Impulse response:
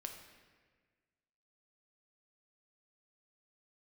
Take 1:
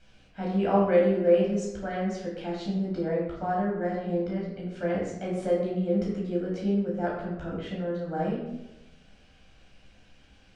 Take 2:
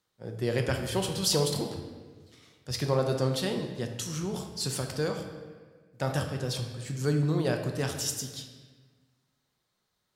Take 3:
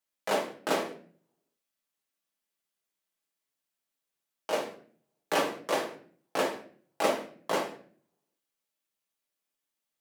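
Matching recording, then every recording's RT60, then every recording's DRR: 2; 0.95, 1.5, 0.50 seconds; −5.0, 3.5, −1.0 decibels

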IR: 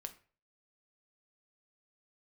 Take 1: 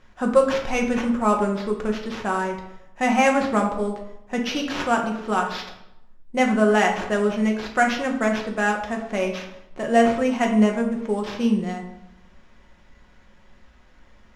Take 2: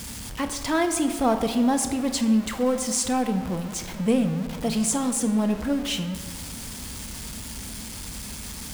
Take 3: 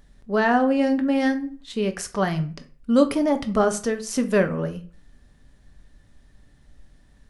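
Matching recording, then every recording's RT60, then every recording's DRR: 3; 0.85 s, non-exponential decay, 0.40 s; 1.0, 7.5, 7.0 decibels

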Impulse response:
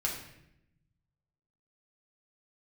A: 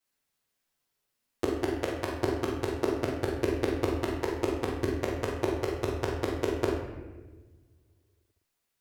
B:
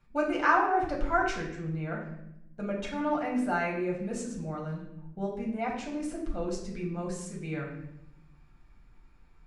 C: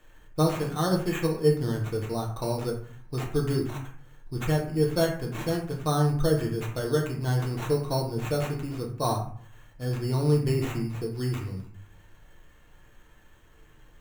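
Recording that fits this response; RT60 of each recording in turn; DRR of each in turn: B; 1.3, 0.80, 0.50 seconds; −11.0, −3.5, −1.5 decibels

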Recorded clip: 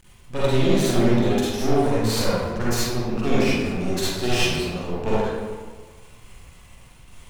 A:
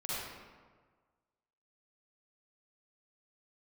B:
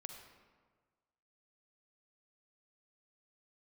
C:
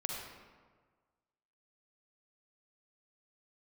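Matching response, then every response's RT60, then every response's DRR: A; 1.5, 1.5, 1.5 seconds; −9.5, 4.5, −0.5 decibels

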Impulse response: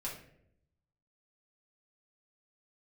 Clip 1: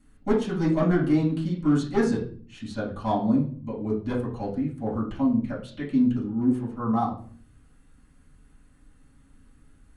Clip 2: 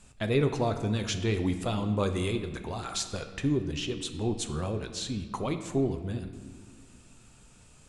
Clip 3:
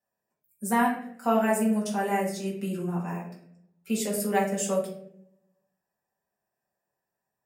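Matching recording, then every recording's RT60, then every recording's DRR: 3; 0.45 s, non-exponential decay, 0.70 s; −7.0, 6.5, −5.5 decibels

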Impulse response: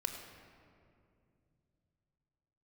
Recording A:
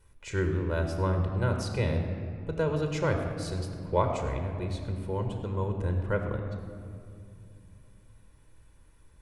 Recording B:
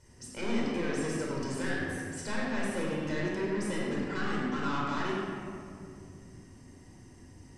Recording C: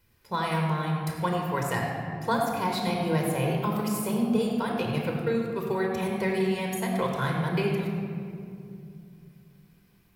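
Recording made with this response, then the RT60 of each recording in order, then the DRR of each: A; 2.5, 2.5, 2.5 seconds; 4.5, −4.5, 0.0 decibels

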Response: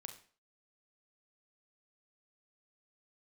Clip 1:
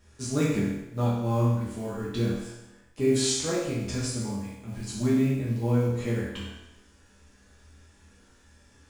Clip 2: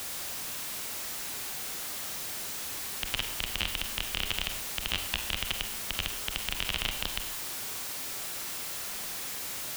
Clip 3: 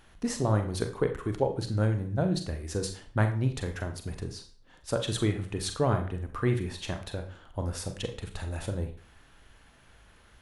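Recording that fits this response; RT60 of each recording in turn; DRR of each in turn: 3; 0.95, 0.65, 0.45 seconds; −8.0, 6.5, 5.5 decibels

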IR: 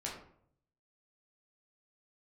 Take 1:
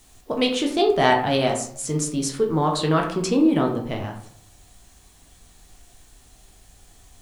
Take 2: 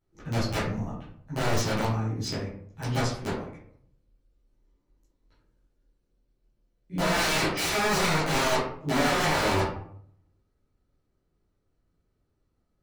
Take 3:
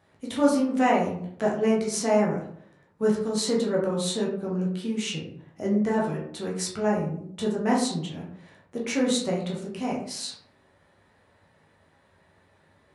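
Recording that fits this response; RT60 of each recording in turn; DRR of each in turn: 3; 0.65, 0.65, 0.65 seconds; 0.5, −12.0, −4.0 decibels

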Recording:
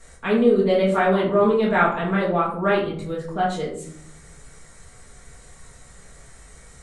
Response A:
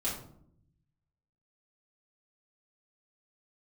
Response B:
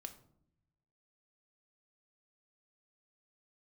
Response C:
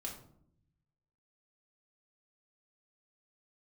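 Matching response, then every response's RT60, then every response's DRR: A; 0.70 s, non-exponential decay, 0.70 s; −8.5, 7.0, −1.5 decibels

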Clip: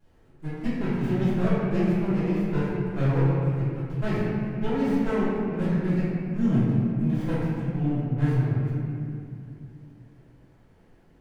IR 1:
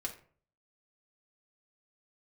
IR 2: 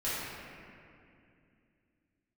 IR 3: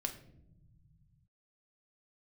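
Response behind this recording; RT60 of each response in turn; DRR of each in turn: 2; 0.45 s, 2.5 s, non-exponential decay; −1.0, −12.5, 3.5 decibels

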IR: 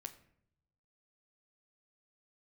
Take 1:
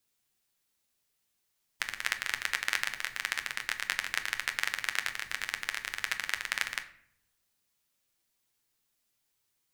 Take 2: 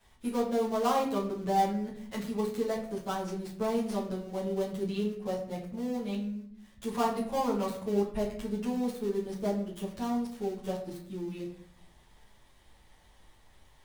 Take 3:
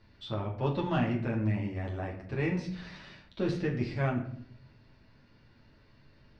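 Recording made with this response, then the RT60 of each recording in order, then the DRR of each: 1; 0.70, 0.65, 0.65 seconds; 6.0, −7.5, −2.5 decibels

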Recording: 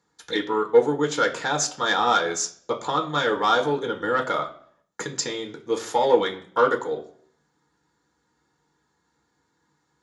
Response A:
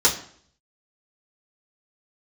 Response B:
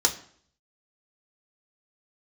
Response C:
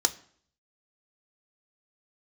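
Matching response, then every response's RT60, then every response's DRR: B; 0.55, 0.55, 0.55 seconds; −7.5, 0.5, 7.0 decibels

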